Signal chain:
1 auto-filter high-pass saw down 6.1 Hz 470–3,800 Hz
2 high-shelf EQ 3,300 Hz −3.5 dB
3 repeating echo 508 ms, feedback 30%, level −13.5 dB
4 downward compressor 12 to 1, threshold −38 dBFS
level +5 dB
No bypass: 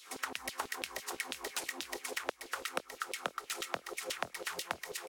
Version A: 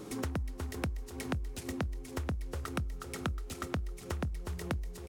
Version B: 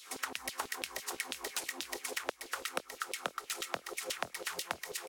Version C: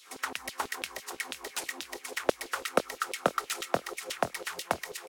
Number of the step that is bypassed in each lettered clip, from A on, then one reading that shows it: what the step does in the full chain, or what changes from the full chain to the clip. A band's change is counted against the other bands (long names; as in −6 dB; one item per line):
1, 125 Hz band +30.5 dB
2, 8 kHz band +2.5 dB
4, average gain reduction 3.5 dB